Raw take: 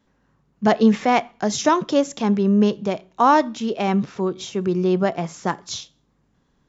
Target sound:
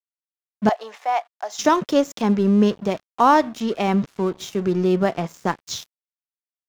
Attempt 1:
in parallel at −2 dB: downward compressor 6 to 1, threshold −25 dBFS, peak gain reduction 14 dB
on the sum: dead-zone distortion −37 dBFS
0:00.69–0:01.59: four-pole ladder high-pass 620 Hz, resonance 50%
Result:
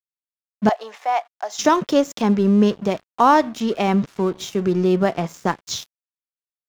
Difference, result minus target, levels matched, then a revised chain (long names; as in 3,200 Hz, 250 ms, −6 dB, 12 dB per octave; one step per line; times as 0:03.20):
downward compressor: peak gain reduction −7 dB
in parallel at −2 dB: downward compressor 6 to 1, threshold −33.5 dBFS, peak gain reduction 21.5 dB
on the sum: dead-zone distortion −37 dBFS
0:00.69–0:01.59: four-pole ladder high-pass 620 Hz, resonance 50%